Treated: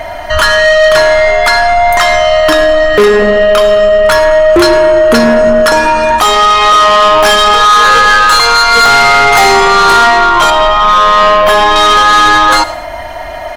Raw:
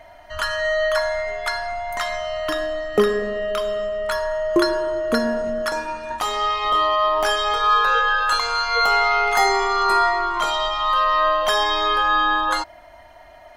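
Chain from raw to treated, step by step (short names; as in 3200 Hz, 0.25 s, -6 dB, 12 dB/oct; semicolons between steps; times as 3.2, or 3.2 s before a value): 10.5–11.76 bell 5500 Hz -13.5 dB 1.9 oct; soft clip -21 dBFS, distortion -9 dB; on a send: feedback echo 0.107 s, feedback 30%, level -20.5 dB; on the sum: maximiser +25 dB; gain -1 dB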